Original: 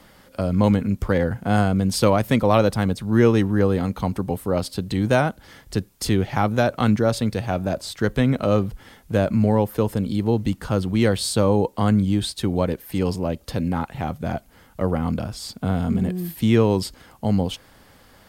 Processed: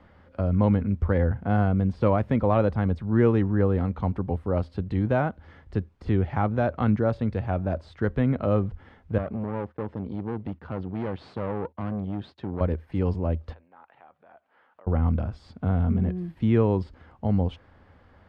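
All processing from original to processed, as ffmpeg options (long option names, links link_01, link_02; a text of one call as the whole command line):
ffmpeg -i in.wav -filter_complex "[0:a]asettb=1/sr,asplit=3[link_01][link_02][link_03];[link_01]atrim=end=9.184[link_04];[link_02]atrim=start=9.18:end=12.61,asetpts=PTS-STARTPTS,afade=type=in:duration=0.004:curve=qsin,afade=type=out:start_time=3.426:duration=0.004:curve=qsin,aeval=exprs='(tanh(11.2*val(0)+0.75)-tanh(0.75))/11.2':channel_layout=same,highpass=130,lowpass=4800,agate=range=-22dB:threshold=-46dB:ratio=16:release=100:detection=peak[link_05];[link_03]atrim=start=12.606[link_06];[link_04][link_05]acrossfade=duration=0.004:curve1=hsin:curve2=qsin[link_07];[link_07][link_06]acrossfade=duration=0.004:curve1=qsin:curve2=hsin,asettb=1/sr,asplit=3[link_08][link_09][link_10];[link_08]atrim=end=13.534[link_11];[link_09]atrim=start=13.53:end=14.87,asetpts=PTS-STARTPTS,afade=type=in:duration=0.004:curve=qsin,afade=type=out:start_time=1.336:duration=0.004:curve=qsin,acompressor=threshold=-40dB:ratio=4:attack=3.2:release=140:knee=1:detection=peak,highpass=670,lowpass=3300,bandreject=frequency=2100:width=21[link_12];[link_10]atrim=start=14.866[link_13];[link_11][link_12]acrossfade=duration=0.004:curve1=hsin:curve2=qsin[link_14];[link_14][link_13]acrossfade=duration=0.004:curve1=qsin:curve2=hsin,deesser=0.7,lowpass=1900,equalizer=frequency=80:width_type=o:width=0.36:gain=13.5,volume=-4.5dB" out.wav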